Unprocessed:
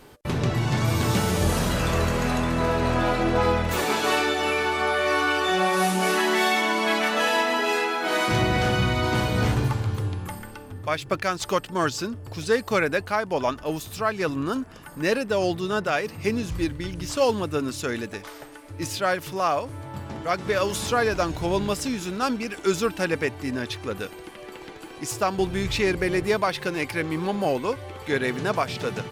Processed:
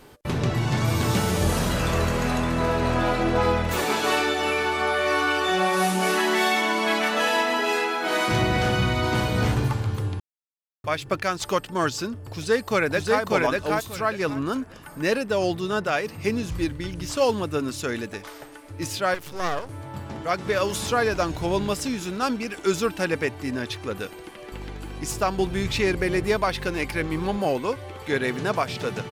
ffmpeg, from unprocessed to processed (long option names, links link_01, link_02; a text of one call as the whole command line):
ffmpeg -i in.wav -filter_complex "[0:a]asplit=2[link_01][link_02];[link_02]afade=type=in:start_time=12.28:duration=0.01,afade=type=out:start_time=13.21:duration=0.01,aecho=0:1:590|1180|1770:0.841395|0.168279|0.0336558[link_03];[link_01][link_03]amix=inputs=2:normalize=0,asettb=1/sr,asplit=3[link_04][link_05][link_06];[link_04]atrim=end=19.144[link_07];[link_05]atrim=start=19.14:end=19.69,asetpts=PTS-STARTPTS,afade=type=in:duration=0.004:curve=qsin,afade=type=out:start_time=0.546:duration=0.004:curve=qsin,aeval=exprs='max(val(0),0)':channel_layout=same[link_08];[link_06]atrim=start=19.686[link_09];[link_07][link_08]acrossfade=duration=0.004:curve1=hsin:curve2=qsin[link_10];[link_10][link_09]acrossfade=duration=0.004:curve1=qsin:curve2=hsin,asettb=1/sr,asplit=3[link_11][link_12][link_13];[link_11]atrim=end=24.524[link_14];[link_12]atrim=start=24.52:end=27.38,asetpts=PTS-STARTPTS,afade=type=in:duration=0.004:curve=qsin,afade=type=out:start_time=2.856:duration=0.004:curve=qsin,aeval=exprs='val(0)+0.0178*(sin(2*PI*50*n/s)+sin(2*PI*2*50*n/s)/2+sin(2*PI*3*50*n/s)/3+sin(2*PI*4*50*n/s)/4+sin(2*PI*5*50*n/s)/5)':channel_layout=same[link_15];[link_13]atrim=start=27.376[link_16];[link_14][link_15]acrossfade=duration=0.004:curve1=hsin:curve2=qsin[link_17];[link_17][link_16]acrossfade=duration=0.004:curve1=qsin:curve2=hsin,asplit=3[link_18][link_19][link_20];[link_18]atrim=end=10.2,asetpts=PTS-STARTPTS,afade=type=out:start_time=10.196:duration=0.004:curve=hsin[link_21];[link_19]atrim=start=10.2:end=10.84,asetpts=PTS-STARTPTS,volume=0[link_22];[link_20]atrim=start=10.84,asetpts=PTS-STARTPTS,afade=type=in:duration=0.004:curve=hsin[link_23];[link_21][link_22][link_23]concat=n=3:v=0:a=1" out.wav